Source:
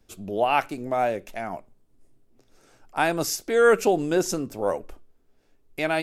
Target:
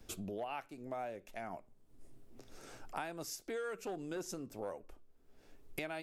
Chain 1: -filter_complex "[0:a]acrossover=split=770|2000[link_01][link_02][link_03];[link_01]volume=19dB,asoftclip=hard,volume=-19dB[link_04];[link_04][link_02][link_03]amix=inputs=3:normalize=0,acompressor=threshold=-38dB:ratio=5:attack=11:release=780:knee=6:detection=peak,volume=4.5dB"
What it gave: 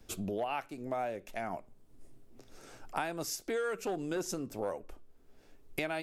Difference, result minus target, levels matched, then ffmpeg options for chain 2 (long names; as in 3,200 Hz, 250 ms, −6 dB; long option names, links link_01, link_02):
downward compressor: peak gain reduction −6.5 dB
-filter_complex "[0:a]acrossover=split=770|2000[link_01][link_02][link_03];[link_01]volume=19dB,asoftclip=hard,volume=-19dB[link_04];[link_04][link_02][link_03]amix=inputs=3:normalize=0,acompressor=threshold=-46dB:ratio=5:attack=11:release=780:knee=6:detection=peak,volume=4.5dB"